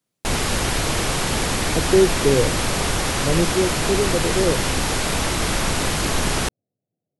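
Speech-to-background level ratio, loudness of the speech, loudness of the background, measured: -0.5 dB, -22.0 LUFS, -21.5 LUFS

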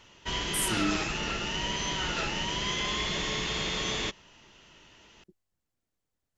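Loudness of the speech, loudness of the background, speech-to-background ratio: -32.5 LUFS, -30.0 LUFS, -2.5 dB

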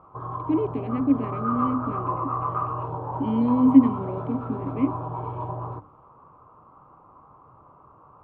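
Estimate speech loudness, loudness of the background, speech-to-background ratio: -24.0 LUFS, -31.0 LUFS, 7.0 dB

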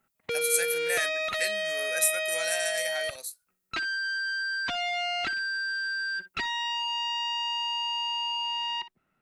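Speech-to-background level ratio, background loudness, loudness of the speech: -1.0 dB, -29.0 LUFS, -30.0 LUFS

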